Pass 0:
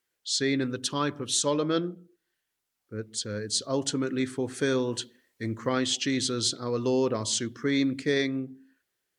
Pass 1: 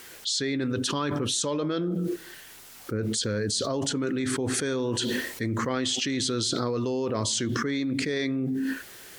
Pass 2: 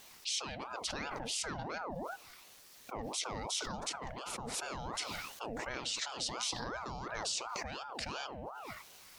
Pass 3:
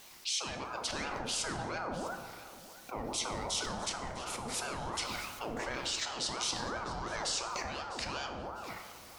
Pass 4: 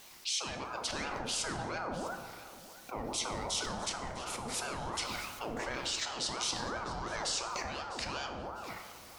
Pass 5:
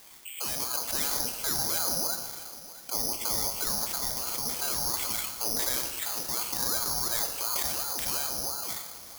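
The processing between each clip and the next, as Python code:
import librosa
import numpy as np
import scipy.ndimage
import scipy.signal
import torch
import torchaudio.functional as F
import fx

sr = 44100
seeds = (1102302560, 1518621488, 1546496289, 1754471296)

y1 = fx.env_flatten(x, sr, amount_pct=100)
y1 = y1 * 10.0 ** (-5.0 / 20.0)
y2 = fx.graphic_eq_31(y1, sr, hz=(250, 400, 5000), db=(-12, -3, 7))
y2 = fx.ring_lfo(y2, sr, carrier_hz=740.0, swing_pct=55, hz=2.8)
y2 = y2 * 10.0 ** (-8.0 / 20.0)
y3 = fx.echo_feedback(y2, sr, ms=652, feedback_pct=32, wet_db=-17.0)
y3 = fx.rev_plate(y3, sr, seeds[0], rt60_s=1.7, hf_ratio=0.45, predelay_ms=0, drr_db=5.0)
y3 = y3 * 10.0 ** (1.5 / 20.0)
y4 = y3
y5 = (np.kron(scipy.signal.resample_poly(y4, 1, 8), np.eye(8)[0]) * 8)[:len(y4)]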